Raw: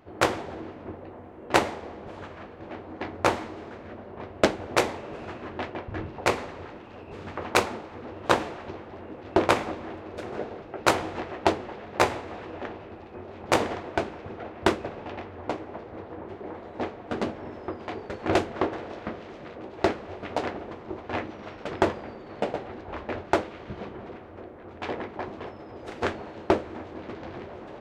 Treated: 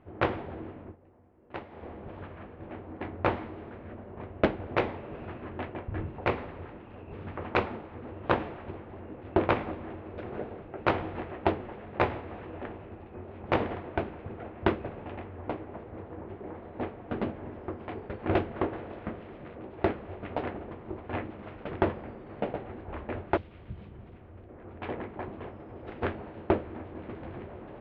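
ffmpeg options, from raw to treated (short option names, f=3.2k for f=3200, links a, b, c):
-filter_complex "[0:a]asettb=1/sr,asplit=3[a][b][c];[a]atrim=end=23.374[d];[b]atrim=start=23.37:end=24.49,asetpts=PTS-STARTPTS,afade=t=in:d=0.004:c=qsin,afade=t=out:st=1.116:d=0.004:c=qsin,acrossover=split=160|3000[e][f][g];[f]acompressor=threshold=-48dB:ratio=6:attack=3.2:release=140:knee=2.83:detection=peak[h];[e][h][g]amix=inputs=3:normalize=0[i];[c]atrim=start=24.486[j];[d][i]acrossfade=d=0.004:c1=hsin:c2=qsin[k];[k][j]acrossfade=d=0.004:c1=qsin:c2=hsin,asplit=3[l][m][n];[l]atrim=end=0.96,asetpts=PTS-STARTPTS,afade=t=out:st=0.79:d=0.17:silence=0.188365[o];[m]atrim=start=0.96:end=1.69,asetpts=PTS-STARTPTS,volume=-14.5dB[p];[n]atrim=start=1.69,asetpts=PTS-STARTPTS,afade=t=in:d=0.17:silence=0.188365[q];[o][p][q]concat=n=3:v=0:a=1,lowpass=f=3.1k:w=0.5412,lowpass=f=3.1k:w=1.3066,lowshelf=f=220:g=9,volume=-5.5dB"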